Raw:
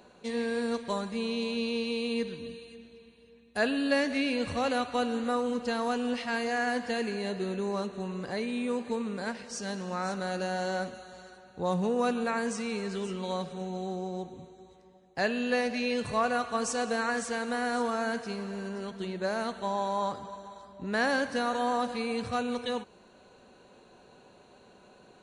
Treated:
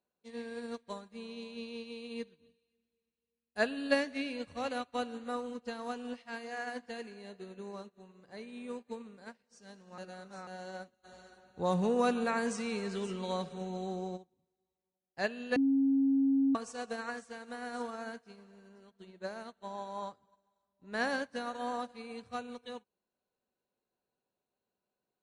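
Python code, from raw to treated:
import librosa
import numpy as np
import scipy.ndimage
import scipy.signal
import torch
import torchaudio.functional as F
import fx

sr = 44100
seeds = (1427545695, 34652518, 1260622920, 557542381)

y = fx.hum_notches(x, sr, base_hz=60, count=7, at=(6.2, 8.37))
y = fx.env_flatten(y, sr, amount_pct=50, at=(11.03, 14.16), fade=0.02)
y = fx.edit(y, sr, fx.reverse_span(start_s=9.98, length_s=0.49),
    fx.bleep(start_s=15.56, length_s=0.99, hz=272.0, db=-21.5), tone=tone)
y = fx.upward_expand(y, sr, threshold_db=-45.0, expansion=2.5)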